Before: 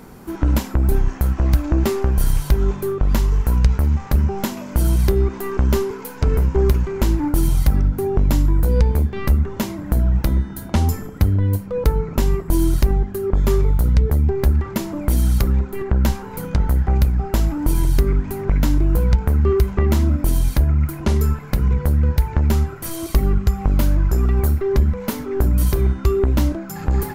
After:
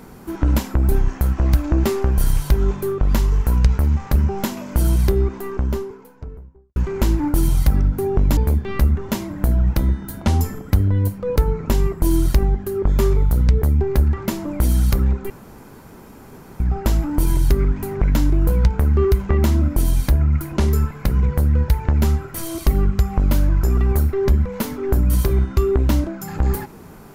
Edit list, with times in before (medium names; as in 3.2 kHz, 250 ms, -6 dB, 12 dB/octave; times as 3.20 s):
4.84–6.76 s: studio fade out
8.37–8.85 s: delete
15.78–17.08 s: room tone